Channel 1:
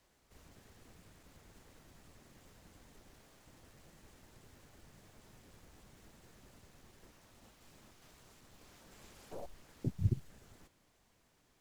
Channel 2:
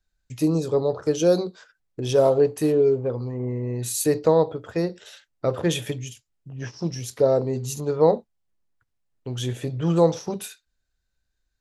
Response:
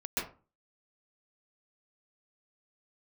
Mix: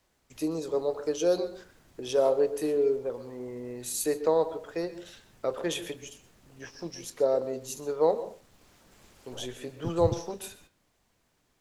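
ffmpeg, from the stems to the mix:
-filter_complex "[0:a]volume=0.5dB[a];[1:a]highpass=320,volume=-6dB,asplit=2[b][c];[c]volume=-17.5dB[d];[2:a]atrim=start_sample=2205[e];[d][e]afir=irnorm=-1:irlink=0[f];[a][b][f]amix=inputs=3:normalize=0"

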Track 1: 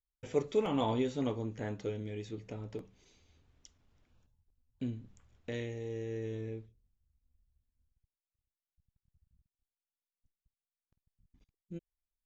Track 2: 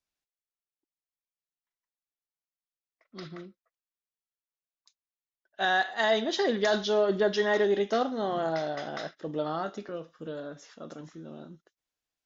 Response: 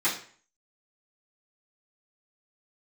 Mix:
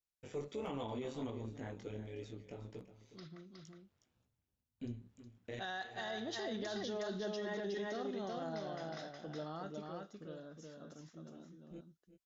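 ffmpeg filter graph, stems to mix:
-filter_complex "[0:a]flanger=delay=16.5:depth=4.8:speed=1.4,highpass=92,tremolo=f=140:d=0.519,volume=-0.5dB,asplit=2[a][b];[b]volume=-14dB[c];[1:a]bass=f=250:g=7,treble=f=4k:g=6,volume=-14dB,asplit=3[d][e][f];[e]volume=-3.5dB[g];[f]apad=whole_len=540532[h];[a][h]sidechaincompress=threshold=-59dB:ratio=8:attack=16:release=301[i];[c][g]amix=inputs=2:normalize=0,aecho=0:1:365:1[j];[i][d][j]amix=inputs=3:normalize=0,alimiter=level_in=8.5dB:limit=-24dB:level=0:latency=1:release=36,volume=-8.5dB"

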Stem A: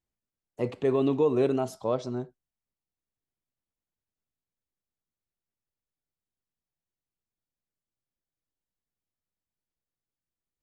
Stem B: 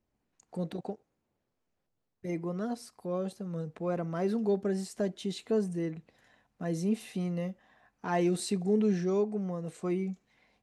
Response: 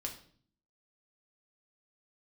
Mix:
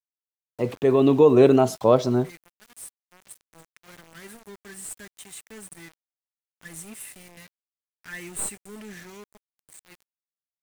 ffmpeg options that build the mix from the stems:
-filter_complex "[0:a]volume=2.5dB[a];[1:a]firequalizer=gain_entry='entry(120,0);entry(180,-16);entry(310,-14);entry(730,-29);entry(1700,5);entry(4700,-12);entry(8100,13)':delay=0.05:min_phase=1,aeval=exprs='clip(val(0),-1,0.0178)':c=same,volume=-8.5dB[b];[a][b]amix=inputs=2:normalize=0,dynaudnorm=f=130:g=17:m=10dB,aeval=exprs='val(0)*gte(abs(val(0)),0.00794)':c=same"

